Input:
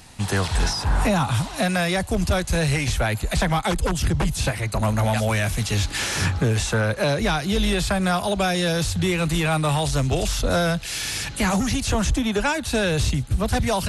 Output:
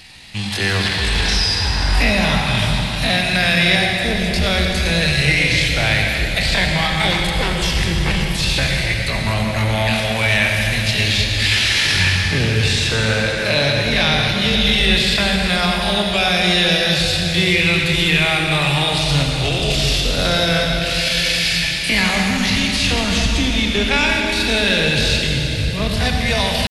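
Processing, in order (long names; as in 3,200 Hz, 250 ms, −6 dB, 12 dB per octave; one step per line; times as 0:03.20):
flat-topped bell 3,000 Hz +11.5 dB
tempo change 0.52×
convolution reverb RT60 4.0 s, pre-delay 59 ms, DRR 0 dB
level −1 dB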